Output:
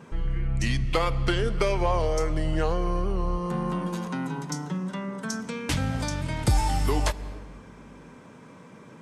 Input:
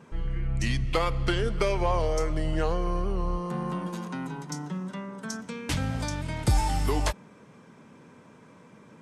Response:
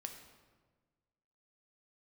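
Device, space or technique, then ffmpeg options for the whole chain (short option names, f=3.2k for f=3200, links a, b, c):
ducked reverb: -filter_complex "[0:a]asplit=3[a][b][c];[1:a]atrim=start_sample=2205[d];[b][d]afir=irnorm=-1:irlink=0[e];[c]apad=whole_len=397754[f];[e][f]sidechaincompress=threshold=-35dB:ratio=8:attack=49:release=212,volume=0.5dB[g];[a][g]amix=inputs=2:normalize=0"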